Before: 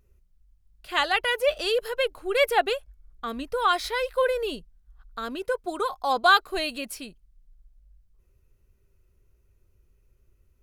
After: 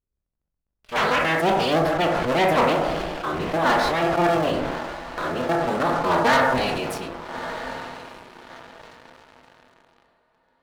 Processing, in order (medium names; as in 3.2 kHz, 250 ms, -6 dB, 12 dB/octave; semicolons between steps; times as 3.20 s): cycle switcher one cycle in 3, inverted; gate -51 dBFS, range -12 dB; treble shelf 3.9 kHz -11.5 dB; echo that smears into a reverb 1282 ms, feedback 42%, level -15 dB; on a send at -2.5 dB: reverberation RT60 0.70 s, pre-delay 13 ms; on the sum: waveshaping leveller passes 3; treble shelf 10 kHz -4.5 dB; de-hum 47.68 Hz, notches 8; decay stretcher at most 25 dB/s; trim -7 dB